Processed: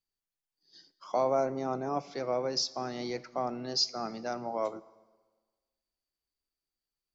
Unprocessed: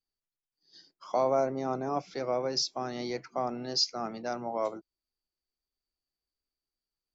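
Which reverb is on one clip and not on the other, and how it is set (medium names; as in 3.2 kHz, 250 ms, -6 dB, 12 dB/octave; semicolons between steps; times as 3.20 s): Schroeder reverb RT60 1.4 s, combs from 28 ms, DRR 18.5 dB; trim -1 dB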